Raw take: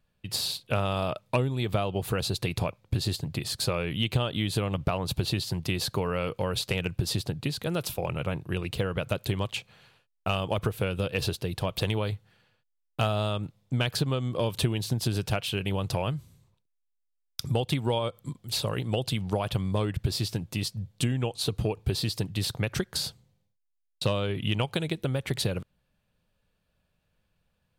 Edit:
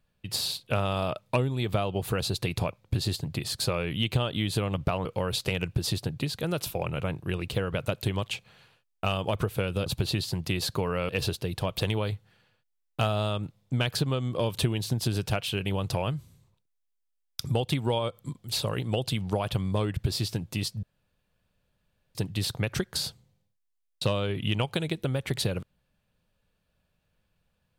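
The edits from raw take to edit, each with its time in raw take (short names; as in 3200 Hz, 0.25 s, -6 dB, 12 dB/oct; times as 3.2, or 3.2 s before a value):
5.05–6.28 move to 11.09
20.83–22.15 room tone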